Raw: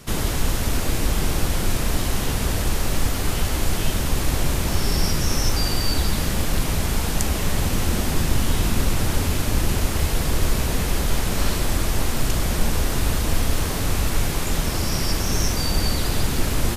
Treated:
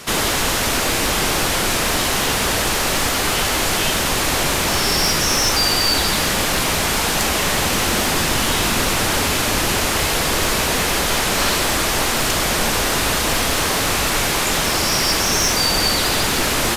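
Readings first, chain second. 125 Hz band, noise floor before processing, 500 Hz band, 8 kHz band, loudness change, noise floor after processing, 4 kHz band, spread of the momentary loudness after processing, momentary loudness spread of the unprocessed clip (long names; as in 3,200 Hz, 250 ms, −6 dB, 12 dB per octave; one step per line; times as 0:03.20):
−3.5 dB, −24 dBFS, +7.0 dB, +9.0 dB, +6.5 dB, −20 dBFS, +10.5 dB, 2 LU, 2 LU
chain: mid-hump overdrive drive 21 dB, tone 7,100 Hz, clips at −1.5 dBFS
level −2.5 dB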